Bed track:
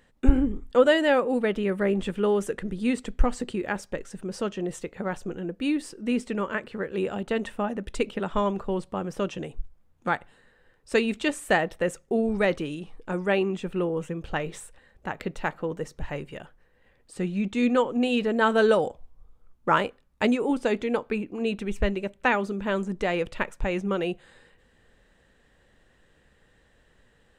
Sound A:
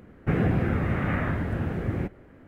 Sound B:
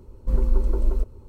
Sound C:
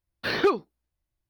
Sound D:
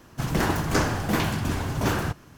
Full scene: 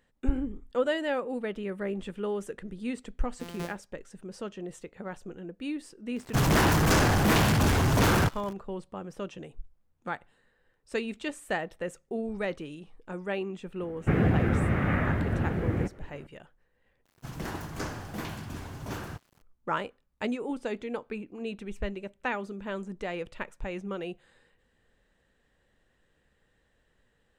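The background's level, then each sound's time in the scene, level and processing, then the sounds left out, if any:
bed track -8.5 dB
3.16 add C -16 dB + sample sorter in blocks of 256 samples
6.16 add D -10 dB + sample leveller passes 5
13.8 add A
17.05 replace with D -12.5 dB + sample gate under -45 dBFS
not used: B

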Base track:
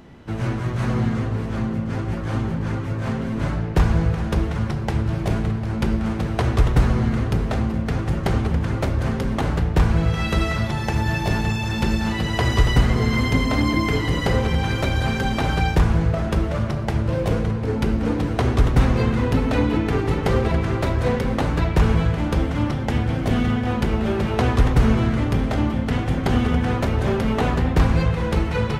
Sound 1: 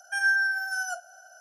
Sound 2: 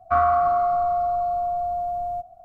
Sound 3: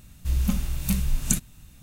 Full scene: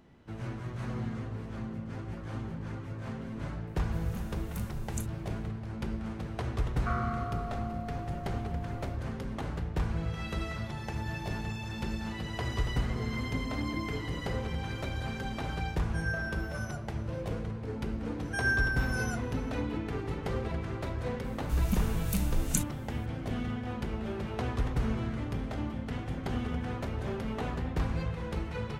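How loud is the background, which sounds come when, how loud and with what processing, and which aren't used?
base track -14 dB
3.67 add 3 -17 dB
6.75 add 2 -5.5 dB + band shelf 520 Hz -14.5 dB 2.4 oct
15.82 add 1 -13.5 dB
18.21 add 1 -6 dB
21.24 add 3 -6 dB

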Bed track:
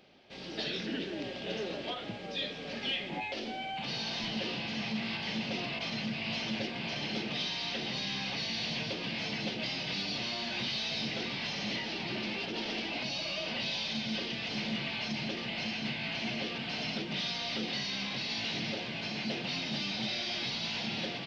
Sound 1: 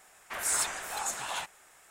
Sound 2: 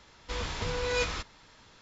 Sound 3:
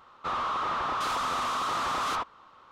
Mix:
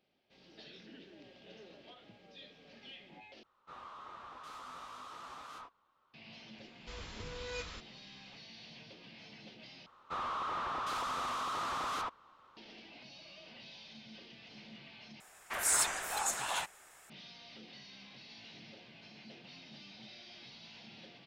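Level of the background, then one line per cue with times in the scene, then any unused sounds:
bed track -18 dB
3.43 replace with 3 -16 dB + detuned doubles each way 22 cents
6.58 add 2 -12.5 dB + bell 790 Hz -3.5 dB 0.65 oct
9.86 replace with 3 -7.5 dB
15.2 replace with 1 -0.5 dB

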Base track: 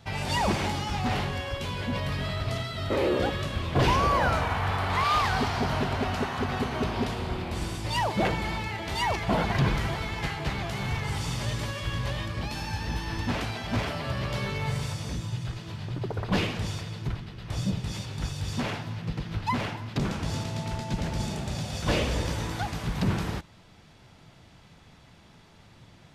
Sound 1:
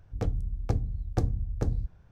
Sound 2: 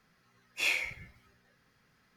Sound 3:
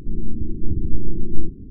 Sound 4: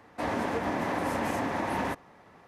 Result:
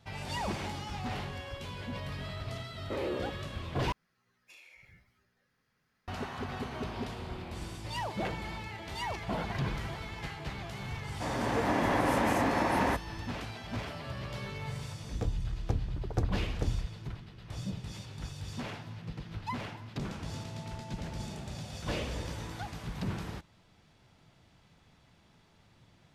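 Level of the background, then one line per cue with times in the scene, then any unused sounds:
base track -9 dB
3.92 replace with 2 -8 dB + compressor 16:1, threshold -44 dBFS
11.02 add 4 -6 dB + AGC gain up to 8 dB
15 add 1 -3.5 dB
not used: 3

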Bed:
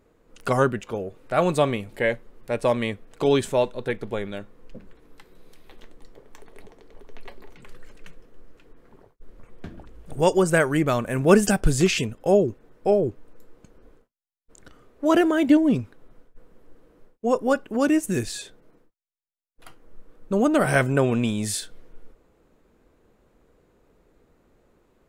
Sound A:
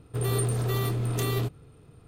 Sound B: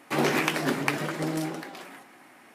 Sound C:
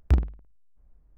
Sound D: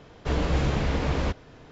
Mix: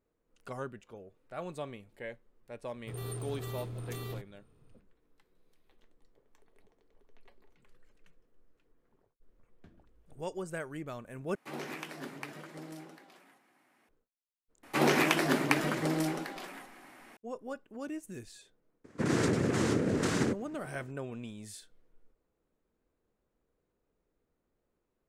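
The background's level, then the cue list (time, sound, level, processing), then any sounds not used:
bed -19.5 dB
2.73 add A -13 dB
11.35 replace with B -16.5 dB
14.63 add B -1.5 dB
18.84 add A -1.5 dB + noise vocoder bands 3
not used: C, D

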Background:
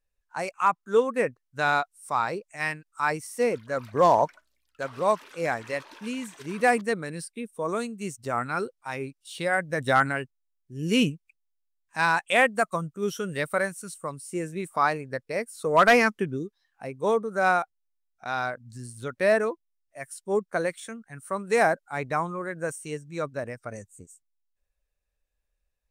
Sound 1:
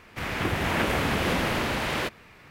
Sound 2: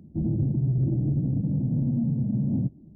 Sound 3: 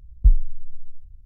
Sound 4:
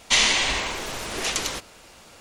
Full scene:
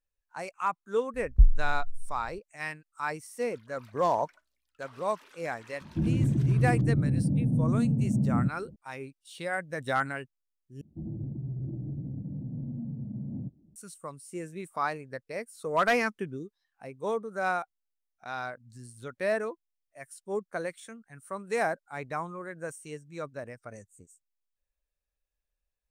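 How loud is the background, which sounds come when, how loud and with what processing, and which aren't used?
background -7 dB
1.14 add 3 -3.5 dB
5.81 add 2 -0.5 dB
10.81 replace with 2 -11.5 dB
not used: 1, 4

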